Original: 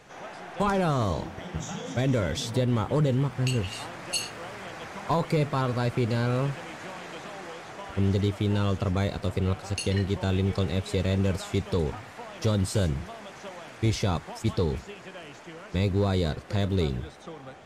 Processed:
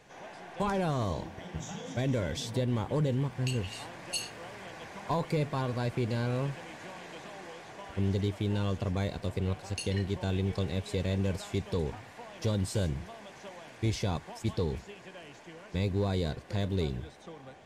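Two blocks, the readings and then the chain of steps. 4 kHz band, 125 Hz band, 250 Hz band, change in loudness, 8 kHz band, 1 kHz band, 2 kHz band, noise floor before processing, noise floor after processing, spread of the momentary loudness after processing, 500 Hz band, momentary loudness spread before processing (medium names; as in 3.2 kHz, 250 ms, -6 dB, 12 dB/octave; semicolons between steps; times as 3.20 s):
-5.0 dB, -5.0 dB, -5.0 dB, -5.0 dB, -5.0 dB, -6.0 dB, -5.5 dB, -46 dBFS, -51 dBFS, 15 LU, -5.0 dB, 15 LU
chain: band-stop 1.3 kHz, Q 6.7; trim -5 dB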